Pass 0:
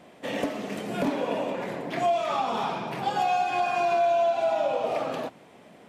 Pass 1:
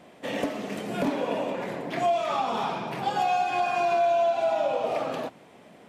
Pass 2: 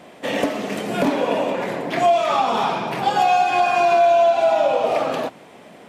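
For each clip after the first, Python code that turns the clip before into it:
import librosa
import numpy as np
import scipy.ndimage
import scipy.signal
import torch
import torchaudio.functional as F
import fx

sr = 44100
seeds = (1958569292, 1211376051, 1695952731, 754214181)

y1 = x
y2 = fx.low_shelf(y1, sr, hz=210.0, db=-4.5)
y2 = y2 * librosa.db_to_amplitude(8.5)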